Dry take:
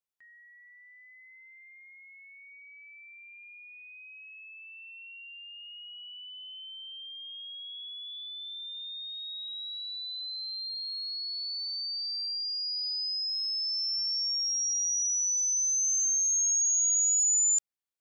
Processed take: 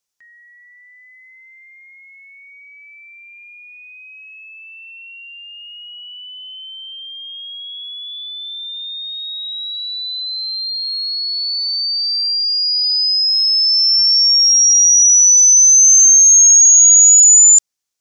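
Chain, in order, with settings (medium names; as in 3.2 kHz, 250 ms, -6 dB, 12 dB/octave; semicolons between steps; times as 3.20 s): peaking EQ 6 kHz +11 dB 1 oct; trim +8.5 dB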